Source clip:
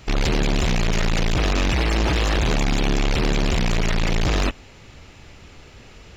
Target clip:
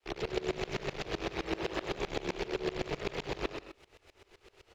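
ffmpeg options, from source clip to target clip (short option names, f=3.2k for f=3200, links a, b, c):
-filter_complex "[0:a]lowpass=5.3k,bandreject=f=60:t=h:w=6,bandreject=f=120:t=h:w=6,bandreject=f=180:t=h:w=6,bandreject=f=240:t=h:w=6,bandreject=f=300:t=h:w=6,bandreject=f=360:t=h:w=6,bandreject=f=420:t=h:w=6,bandreject=f=480:t=h:w=6,bandreject=f=540:t=h:w=6,acrossover=split=280[a][b];[b]acompressor=threshold=-30dB:ratio=2[c];[a][c]amix=inputs=2:normalize=0,lowshelf=f=300:t=q:w=3:g=-8,acrossover=split=120|2800[d][e][f];[d]acompressor=threshold=-38dB:ratio=5[g];[g][e][f]amix=inputs=3:normalize=0,adynamicequalizer=threshold=0.00631:dfrequency=150:dqfactor=0.93:tfrequency=150:tqfactor=0.93:attack=5:release=100:ratio=0.375:range=2.5:mode=boostabove:tftype=bell,aeval=exprs='sgn(val(0))*max(abs(val(0))-0.00266,0)':c=same,atempo=1.3,asplit=2[h][i];[i]aecho=0:1:100|170|219|253.3|277.3:0.631|0.398|0.251|0.158|0.1[j];[h][j]amix=inputs=2:normalize=0,aeval=exprs='val(0)*pow(10,-23*if(lt(mod(-7.8*n/s,1),2*abs(-7.8)/1000),1-mod(-7.8*n/s,1)/(2*abs(-7.8)/1000),(mod(-7.8*n/s,1)-2*abs(-7.8)/1000)/(1-2*abs(-7.8)/1000))/20)':c=same,volume=-4dB"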